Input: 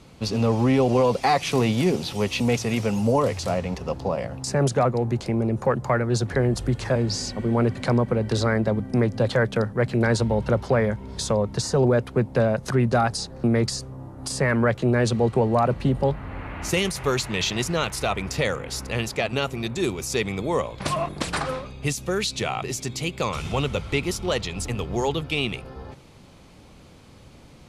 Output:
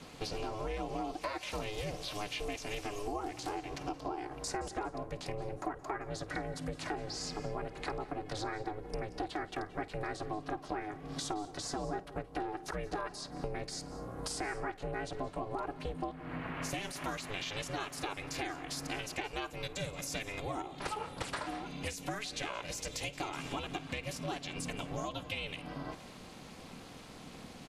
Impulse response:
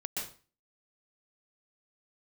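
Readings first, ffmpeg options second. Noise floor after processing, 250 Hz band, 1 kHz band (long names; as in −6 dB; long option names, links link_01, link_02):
−51 dBFS, −17.5 dB, −11.0 dB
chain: -filter_complex "[0:a]equalizer=frequency=150:width_type=o:width=2.4:gain=-8.5,aecho=1:1:3.5:0.99,aeval=exprs='val(0)*sin(2*PI*210*n/s)':channel_layout=same,acrossover=split=2600[link_01][link_02];[link_02]alimiter=level_in=1dB:limit=-24dB:level=0:latency=1:release=67,volume=-1dB[link_03];[link_01][link_03]amix=inputs=2:normalize=0,acompressor=threshold=-38dB:ratio=6,asplit=2[link_04][link_05];[1:a]atrim=start_sample=2205,adelay=51[link_06];[link_05][link_06]afir=irnorm=-1:irlink=0,volume=-17dB[link_07];[link_04][link_07]amix=inputs=2:normalize=0,volume=2dB"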